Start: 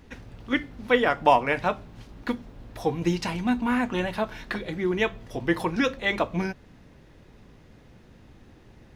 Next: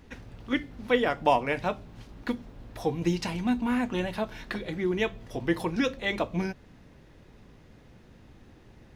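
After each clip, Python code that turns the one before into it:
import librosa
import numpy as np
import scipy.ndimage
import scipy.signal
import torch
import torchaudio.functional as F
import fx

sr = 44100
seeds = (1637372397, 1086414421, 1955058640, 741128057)

y = fx.dynamic_eq(x, sr, hz=1300.0, q=0.82, threshold_db=-36.0, ratio=4.0, max_db=-5)
y = y * 10.0 ** (-1.5 / 20.0)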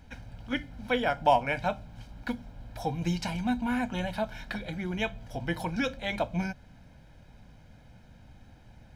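y = x + 0.69 * np.pad(x, (int(1.3 * sr / 1000.0), 0))[:len(x)]
y = y * 10.0 ** (-2.5 / 20.0)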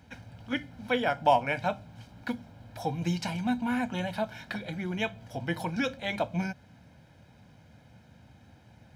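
y = scipy.signal.sosfilt(scipy.signal.butter(4, 78.0, 'highpass', fs=sr, output='sos'), x)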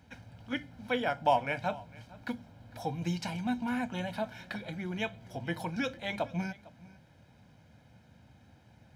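y = x + 10.0 ** (-21.5 / 20.0) * np.pad(x, (int(453 * sr / 1000.0), 0))[:len(x)]
y = y * 10.0 ** (-3.5 / 20.0)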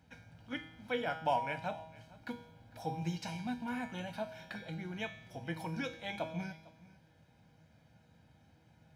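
y = fx.comb_fb(x, sr, f0_hz=160.0, decay_s=0.79, harmonics='all', damping=0.0, mix_pct=80)
y = y * 10.0 ** (6.5 / 20.0)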